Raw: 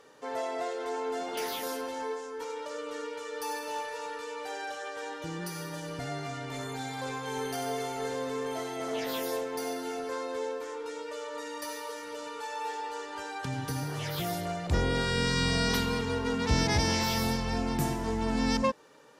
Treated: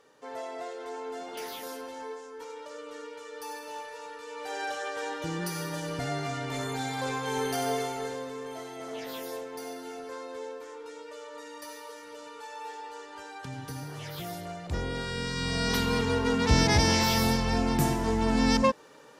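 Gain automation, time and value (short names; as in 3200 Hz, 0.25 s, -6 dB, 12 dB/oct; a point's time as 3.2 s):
4.21 s -4.5 dB
4.63 s +4 dB
7.73 s +4 dB
8.34 s -5 dB
15.34 s -5 dB
15.99 s +4 dB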